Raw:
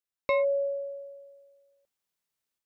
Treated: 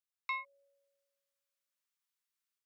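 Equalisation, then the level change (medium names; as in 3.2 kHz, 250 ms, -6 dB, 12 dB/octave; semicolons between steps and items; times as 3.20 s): steep high-pass 990 Hz 48 dB/octave; -4.5 dB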